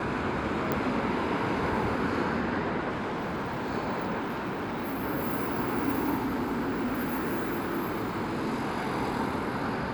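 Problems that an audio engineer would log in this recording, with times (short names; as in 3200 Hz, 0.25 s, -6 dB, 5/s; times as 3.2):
0.72 pop -14 dBFS
2.89–3.71 clipped -28.5 dBFS
4.19–5.04 clipped -29 dBFS
6.16–8.67 clipped -25.5 dBFS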